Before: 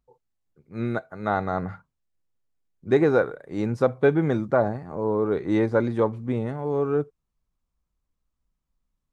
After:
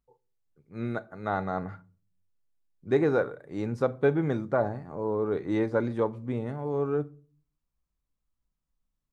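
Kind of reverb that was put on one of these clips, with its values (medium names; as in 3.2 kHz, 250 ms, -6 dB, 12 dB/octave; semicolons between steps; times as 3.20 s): simulated room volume 270 m³, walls furnished, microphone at 0.31 m; trim -5 dB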